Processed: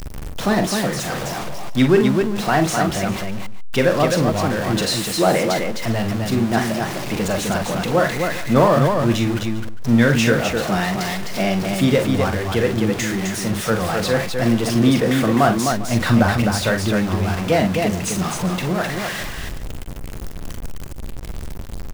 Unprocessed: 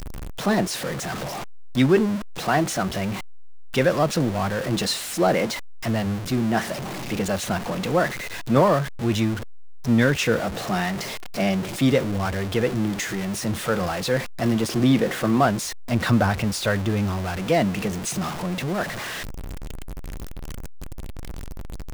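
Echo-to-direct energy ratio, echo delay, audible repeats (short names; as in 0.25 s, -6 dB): -2.5 dB, 43 ms, 3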